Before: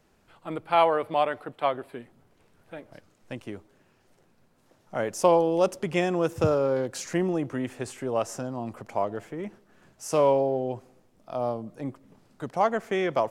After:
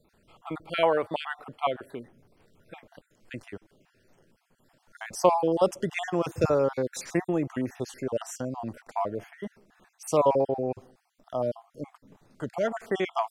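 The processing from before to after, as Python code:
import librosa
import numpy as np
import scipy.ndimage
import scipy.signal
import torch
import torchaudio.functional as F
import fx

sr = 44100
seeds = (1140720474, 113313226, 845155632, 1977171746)

y = fx.spec_dropout(x, sr, seeds[0], share_pct=42)
y = y * librosa.db_to_amplitude(1.0)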